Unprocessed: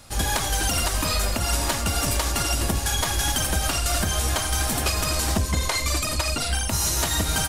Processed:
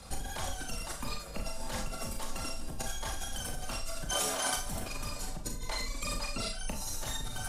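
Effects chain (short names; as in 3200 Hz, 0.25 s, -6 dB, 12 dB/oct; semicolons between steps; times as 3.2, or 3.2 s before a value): formant sharpening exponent 1.5; 4.09–4.57 HPF 360 Hz 12 dB/oct; negative-ratio compressor -31 dBFS, ratio -1; frequency shift -43 Hz; Schroeder reverb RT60 0.34 s, combs from 27 ms, DRR 3 dB; gain -6.5 dB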